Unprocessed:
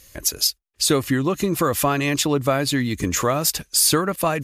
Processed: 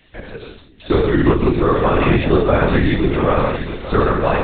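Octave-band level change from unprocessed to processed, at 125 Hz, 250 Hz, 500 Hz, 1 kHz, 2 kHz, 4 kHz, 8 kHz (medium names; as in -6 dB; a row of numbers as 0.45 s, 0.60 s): +7.0 dB, +5.5 dB, +7.0 dB, +5.0 dB, +4.0 dB, -8.0 dB, under -40 dB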